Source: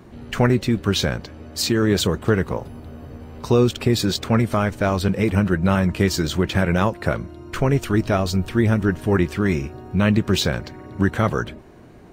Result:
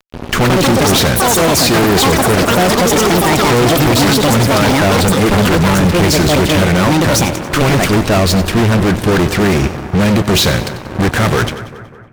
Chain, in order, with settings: echoes that change speed 0.231 s, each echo +7 st, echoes 3; fuzz box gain 30 dB, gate -35 dBFS; split-band echo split 2000 Hz, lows 0.198 s, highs 93 ms, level -13.5 dB; gain +4 dB

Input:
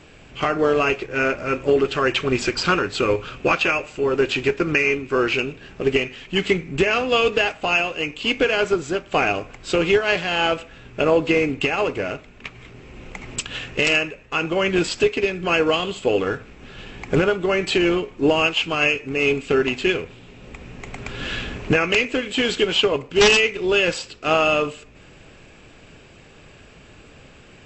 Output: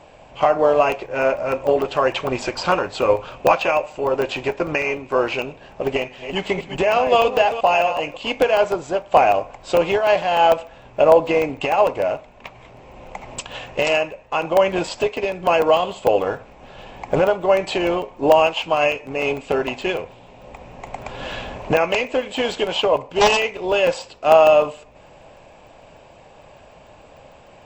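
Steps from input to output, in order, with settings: 5.92–8.17 reverse delay 0.211 s, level -9 dB; band shelf 740 Hz +13.5 dB 1.2 oct; crackling interface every 0.15 s, samples 64, zero, from 0.92; gain -4 dB

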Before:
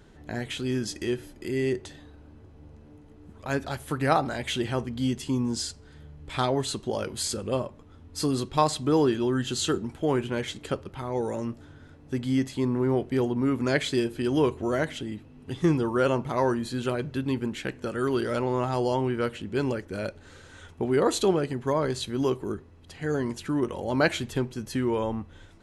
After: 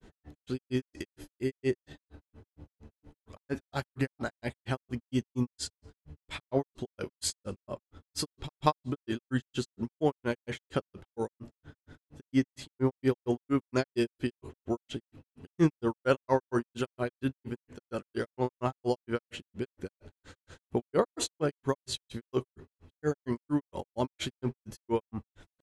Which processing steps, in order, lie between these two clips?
grains 0.123 s, grains 4.3/s, pitch spread up and down by 0 st; gain +1 dB

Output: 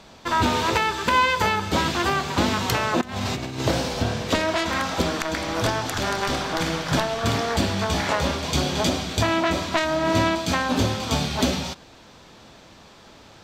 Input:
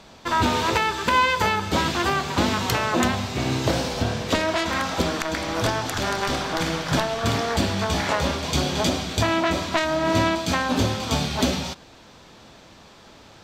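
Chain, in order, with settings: 3.01–3.61 negative-ratio compressor -28 dBFS, ratio -0.5

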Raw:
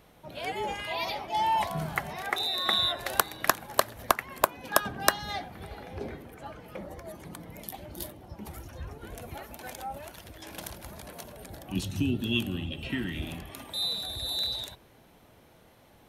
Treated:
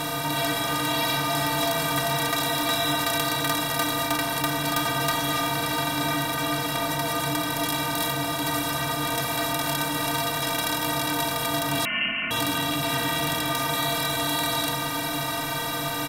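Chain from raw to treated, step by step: per-bin compression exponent 0.2; metallic resonator 140 Hz, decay 0.27 s, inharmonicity 0.03; hard clip -23 dBFS, distortion -19 dB; echo 0.698 s -11 dB; 11.85–12.31 inverted band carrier 3000 Hz; gain +4.5 dB

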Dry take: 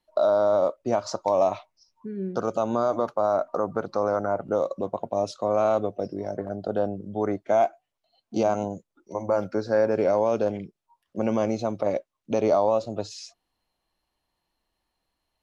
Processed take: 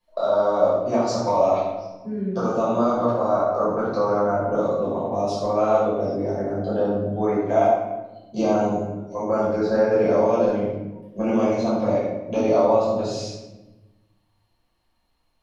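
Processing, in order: compressor 1.5:1, threshold -26 dBFS, peak gain reduction 4 dB; shoebox room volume 530 m³, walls mixed, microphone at 5.5 m; gain -6 dB

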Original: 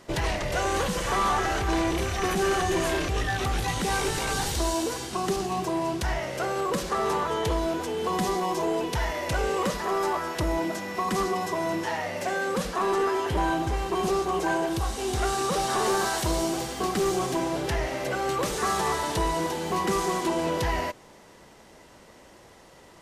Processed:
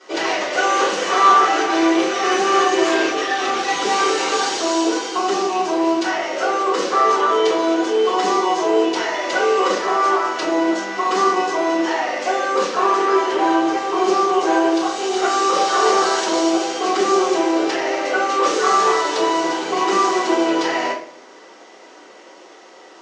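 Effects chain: elliptic band-pass 320–6400 Hz, stop band 50 dB; shoebox room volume 57 m³, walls mixed, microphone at 3.6 m; gain -4.5 dB

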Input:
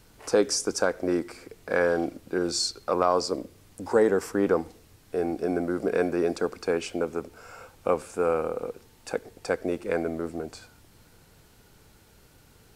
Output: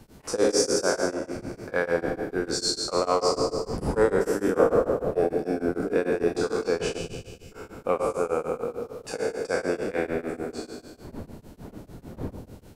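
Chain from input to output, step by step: spectral trails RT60 1.69 s; wind noise 310 Hz -38 dBFS; in parallel at -7 dB: soft clip -15 dBFS, distortion -15 dB; 1.13–1.7 on the sum: compressor, threshold -25 dBFS, peak gain reduction 8 dB; 4.59–5.29 bell 620 Hz +11 dB 0.82 oct; 6.98–7.52 elliptic band-stop 190–2400 Hz; on a send: dark delay 93 ms, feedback 66%, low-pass 1000 Hz, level -7 dB; on the sum: beating tremolo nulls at 6.7 Hz; gain -4 dB

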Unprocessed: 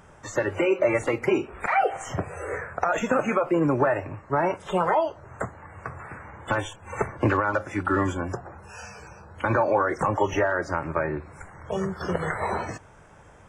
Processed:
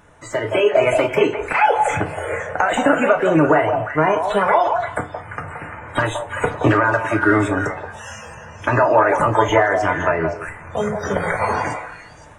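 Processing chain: AGC gain up to 6 dB; speed mistake 44.1 kHz file played as 48 kHz; on a send: delay with a stepping band-pass 0.172 s, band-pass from 710 Hz, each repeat 1.4 oct, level -3 dB; on the sum: FDN reverb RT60 0.31 s, low-frequency decay 0.85×, high-frequency decay 0.8×, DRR 5 dB

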